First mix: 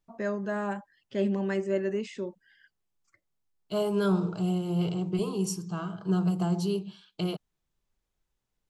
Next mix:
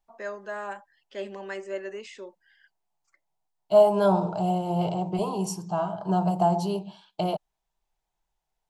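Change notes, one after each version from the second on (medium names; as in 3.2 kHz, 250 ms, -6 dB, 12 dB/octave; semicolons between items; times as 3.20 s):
first voice: add high-pass 550 Hz 12 dB/octave; second voice: add high-order bell 740 Hz +15.5 dB 1 oct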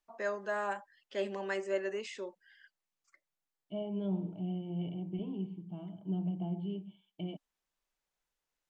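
second voice: add cascade formant filter i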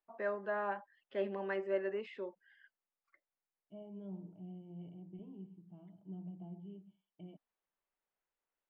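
second voice -11.5 dB; master: add distance through air 450 m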